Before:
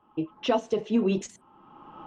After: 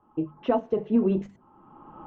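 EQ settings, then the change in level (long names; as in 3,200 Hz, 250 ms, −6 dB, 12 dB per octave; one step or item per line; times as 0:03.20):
low-pass filter 1,500 Hz 12 dB per octave
low-shelf EQ 170 Hz +7 dB
mains-hum notches 50/100/150/200 Hz
0.0 dB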